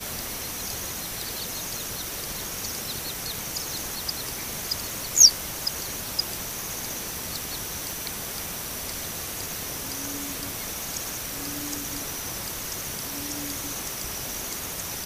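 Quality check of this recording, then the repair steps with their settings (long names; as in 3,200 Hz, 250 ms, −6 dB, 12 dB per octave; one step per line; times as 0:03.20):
0:07.91: click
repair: click removal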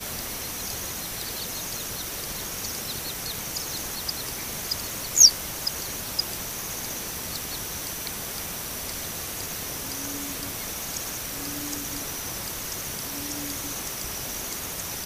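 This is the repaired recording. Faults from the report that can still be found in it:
none of them is left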